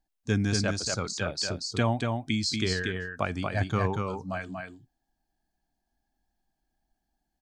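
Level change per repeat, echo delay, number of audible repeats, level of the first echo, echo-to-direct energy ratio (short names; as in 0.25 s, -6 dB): no steady repeat, 0.236 s, 1, -4.0 dB, -4.0 dB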